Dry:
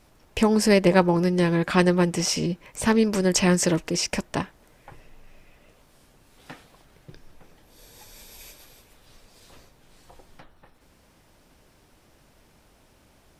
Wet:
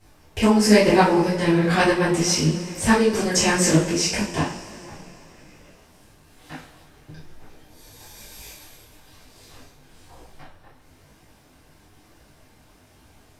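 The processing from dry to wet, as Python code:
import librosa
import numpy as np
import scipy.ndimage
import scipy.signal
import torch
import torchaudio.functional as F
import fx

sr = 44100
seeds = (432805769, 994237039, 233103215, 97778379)

y = fx.rev_double_slope(x, sr, seeds[0], early_s=0.38, late_s=3.5, knee_db=-21, drr_db=-8.0)
y = fx.detune_double(y, sr, cents=37)
y = F.gain(torch.from_numpy(y), -1.0).numpy()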